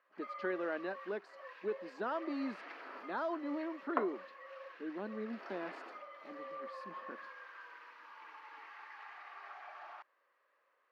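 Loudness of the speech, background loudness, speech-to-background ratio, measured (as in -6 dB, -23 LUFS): -41.0 LUFS, -49.0 LUFS, 8.0 dB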